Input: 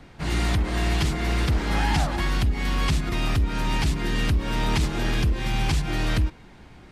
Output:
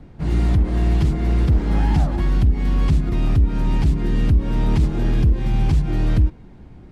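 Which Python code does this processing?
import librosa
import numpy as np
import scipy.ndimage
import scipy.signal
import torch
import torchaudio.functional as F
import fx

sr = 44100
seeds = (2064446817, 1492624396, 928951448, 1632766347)

y = fx.tilt_shelf(x, sr, db=8.5, hz=710.0)
y = y * librosa.db_to_amplitude(-1.5)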